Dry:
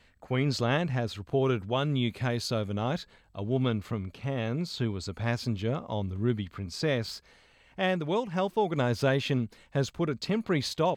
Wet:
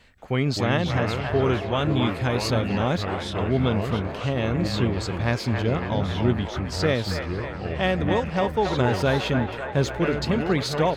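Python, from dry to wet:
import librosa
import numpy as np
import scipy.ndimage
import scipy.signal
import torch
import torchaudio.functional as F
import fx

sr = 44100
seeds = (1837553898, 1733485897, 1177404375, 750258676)

p1 = fx.rider(x, sr, range_db=10, speed_s=0.5)
p2 = x + (p1 * 10.0 ** (1.0 / 20.0))
p3 = fx.echo_wet_bandpass(p2, sr, ms=274, feedback_pct=71, hz=1200.0, wet_db=-4.5)
p4 = fx.echo_pitch(p3, sr, ms=179, semitones=-4, count=3, db_per_echo=-6.0)
y = p4 * 10.0 ** (-2.0 / 20.0)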